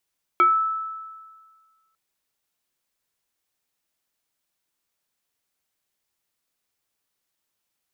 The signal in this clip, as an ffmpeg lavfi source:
-f lavfi -i "aevalsrc='0.251*pow(10,-3*t/1.63)*sin(2*PI*1310*t+0.62*pow(10,-3*t/0.27)*sin(2*PI*0.73*1310*t))':d=1.55:s=44100"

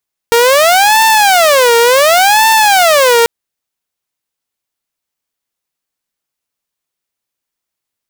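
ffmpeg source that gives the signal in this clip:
-f lavfi -i "aevalsrc='0.708*(2*mod((677.5*t-212.5/(2*PI*0.69)*sin(2*PI*0.69*t)),1)-1)':d=2.94:s=44100"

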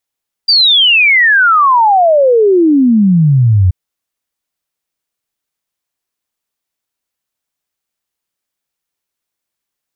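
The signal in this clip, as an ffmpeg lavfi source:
-f lavfi -i "aevalsrc='0.562*clip(min(t,3.23-t)/0.01,0,1)*sin(2*PI*4800*3.23/log(87/4800)*(exp(log(87/4800)*t/3.23)-1))':d=3.23:s=44100"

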